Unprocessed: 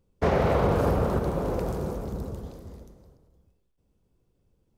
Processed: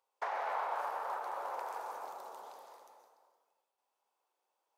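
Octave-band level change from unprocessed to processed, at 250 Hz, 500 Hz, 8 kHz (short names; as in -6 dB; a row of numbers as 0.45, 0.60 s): -36.5, -18.0, -10.0 dB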